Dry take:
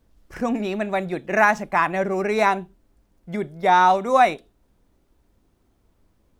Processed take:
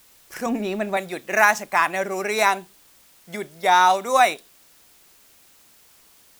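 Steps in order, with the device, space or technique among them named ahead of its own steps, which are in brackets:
0:00.46–0:00.97: spectral tilt −3 dB per octave
turntable without a phono preamp (RIAA equalisation recording; white noise bed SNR 31 dB)

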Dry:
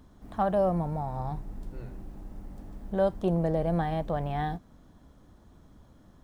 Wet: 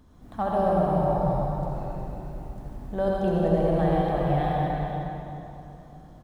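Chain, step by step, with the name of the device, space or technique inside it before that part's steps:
cave (single-tap delay 362 ms −8 dB; convolution reverb RT60 3.1 s, pre-delay 61 ms, DRR −4 dB)
level −1.5 dB

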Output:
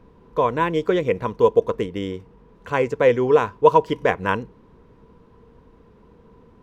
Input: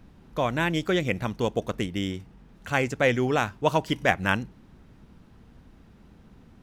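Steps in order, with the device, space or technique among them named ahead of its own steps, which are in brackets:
inside a helmet (high-shelf EQ 5,000 Hz −9.5 dB; hollow resonant body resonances 460/990 Hz, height 16 dB, ringing for 40 ms)
level −1 dB

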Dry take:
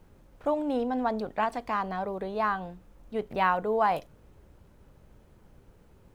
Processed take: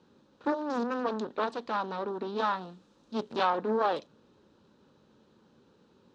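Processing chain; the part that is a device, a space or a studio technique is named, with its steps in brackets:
full-range speaker at full volume (highs frequency-modulated by the lows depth 0.92 ms; loudspeaker in its box 220–6,500 Hz, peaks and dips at 230 Hz +5 dB, 680 Hz −9 dB, 2,100 Hz −10 dB, 3,900 Hz +8 dB)
0:02.38–0:03.45: high-shelf EQ 5,900 Hz +11.5 dB

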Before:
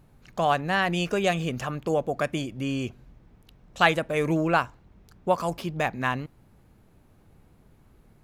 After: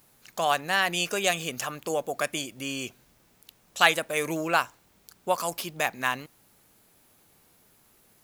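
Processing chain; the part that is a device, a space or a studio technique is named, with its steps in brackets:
turntable without a phono preamp (RIAA equalisation recording; white noise bed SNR 37 dB)
level −1 dB

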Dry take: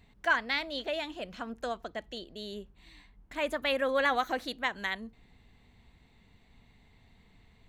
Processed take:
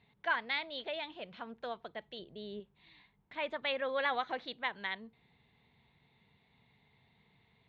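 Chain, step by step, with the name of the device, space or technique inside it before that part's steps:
0:02.19–0:02.60: spectral tilt −2 dB per octave
guitar cabinet (loudspeaker in its box 110–4,100 Hz, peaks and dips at 140 Hz +7 dB, 280 Hz −5 dB, 430 Hz +3 dB, 910 Hz +5 dB, 2,200 Hz +4 dB, 3,600 Hz +6 dB)
level −7 dB

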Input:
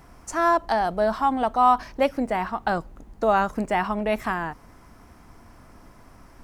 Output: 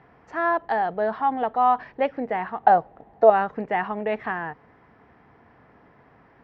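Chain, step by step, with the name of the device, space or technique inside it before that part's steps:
0:02.63–0:03.30: parametric band 710 Hz +13 dB 0.73 octaves
guitar cabinet (loudspeaker in its box 100–3,400 Hz, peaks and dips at 140 Hz +5 dB, 450 Hz +9 dB, 790 Hz +6 dB, 1,800 Hz +8 dB)
level −5.5 dB

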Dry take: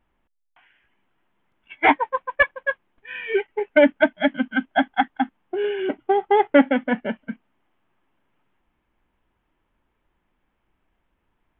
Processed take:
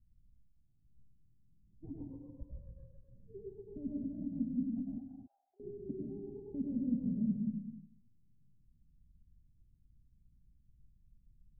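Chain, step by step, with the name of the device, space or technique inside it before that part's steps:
club heard from the street (brickwall limiter −14.5 dBFS, peak gain reduction 11 dB; low-pass filter 160 Hz 24 dB per octave; convolution reverb RT60 0.65 s, pre-delay 94 ms, DRR −2.5 dB)
0:04.98–0:05.60: Butterworth high-pass 500 Hz 72 dB per octave
reverb whose tail is shaped and stops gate 300 ms rising, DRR 6.5 dB
level +5 dB

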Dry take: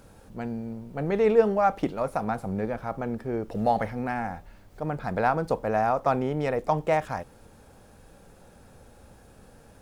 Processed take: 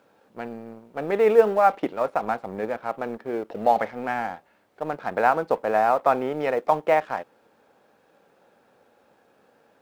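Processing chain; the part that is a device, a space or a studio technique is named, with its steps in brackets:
phone line with mismatched companding (band-pass filter 330–3,400 Hz; mu-law and A-law mismatch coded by A)
level +5 dB

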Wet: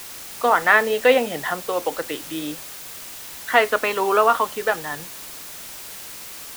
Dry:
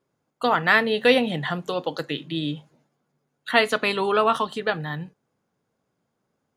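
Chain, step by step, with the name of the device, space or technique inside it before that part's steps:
wax cylinder (band-pass filter 390–2,100 Hz; tape wow and flutter; white noise bed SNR 14 dB)
level +4.5 dB

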